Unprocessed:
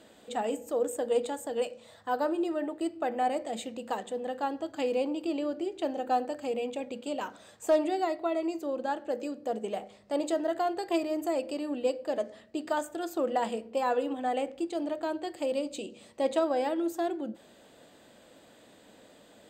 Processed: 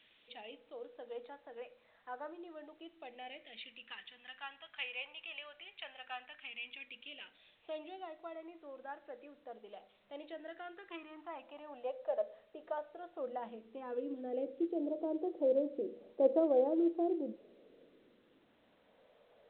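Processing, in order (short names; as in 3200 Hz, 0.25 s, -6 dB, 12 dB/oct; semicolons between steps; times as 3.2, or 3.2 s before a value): band-pass sweep 2400 Hz -> 440 Hz, 9.84–12.58; phaser stages 2, 0.14 Hz, lowest notch 290–2900 Hz; gain +3.5 dB; A-law 64 kbps 8000 Hz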